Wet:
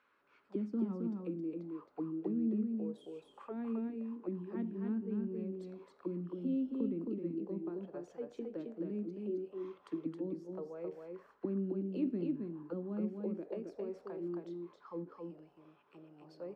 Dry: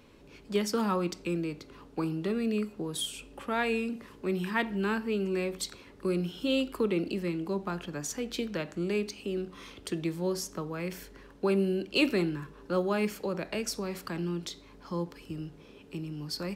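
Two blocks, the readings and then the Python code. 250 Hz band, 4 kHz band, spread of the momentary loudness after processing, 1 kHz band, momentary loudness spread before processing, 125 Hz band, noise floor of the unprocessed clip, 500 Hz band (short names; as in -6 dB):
-5.0 dB, under -30 dB, 11 LU, -18.0 dB, 11 LU, -9.0 dB, -54 dBFS, -9.5 dB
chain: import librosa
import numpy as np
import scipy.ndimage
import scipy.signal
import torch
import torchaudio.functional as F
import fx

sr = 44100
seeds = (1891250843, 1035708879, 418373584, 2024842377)

y = fx.auto_wah(x, sr, base_hz=240.0, top_hz=1500.0, q=3.6, full_db=-27.0, direction='down')
y = y + 10.0 ** (-4.0 / 20.0) * np.pad(y, (int(268 * sr / 1000.0), 0))[:len(y)]
y = F.gain(torch.from_numpy(y), -2.0).numpy()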